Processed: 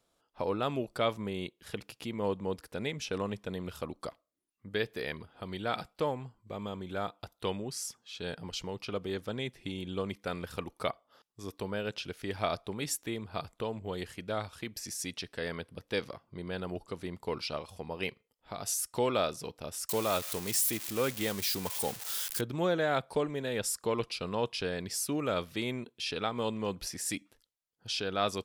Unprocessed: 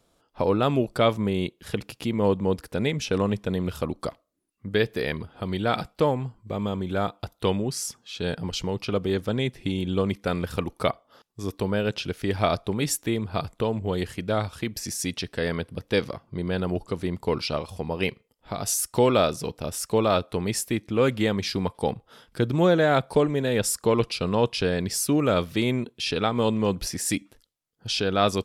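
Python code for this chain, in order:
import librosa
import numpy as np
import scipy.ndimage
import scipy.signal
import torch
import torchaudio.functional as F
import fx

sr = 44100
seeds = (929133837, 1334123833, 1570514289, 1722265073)

y = fx.crossing_spikes(x, sr, level_db=-18.5, at=(19.89, 22.41))
y = fx.low_shelf(y, sr, hz=380.0, db=-6.5)
y = y * librosa.db_to_amplitude(-7.0)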